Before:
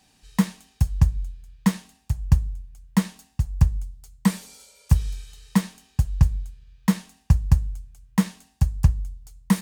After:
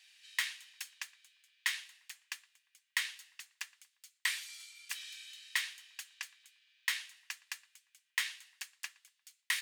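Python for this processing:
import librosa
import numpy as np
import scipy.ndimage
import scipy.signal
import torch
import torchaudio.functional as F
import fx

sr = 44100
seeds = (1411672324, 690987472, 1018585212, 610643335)

p1 = fx.ladder_highpass(x, sr, hz=1600.0, resonance_pct=45)
p2 = fx.peak_eq(p1, sr, hz=3200.0, db=7.5, octaves=1.2)
p3 = p2 + fx.echo_filtered(p2, sr, ms=117, feedback_pct=55, hz=2700.0, wet_db=-23, dry=0)
y = p3 * 10.0 ** (3.0 / 20.0)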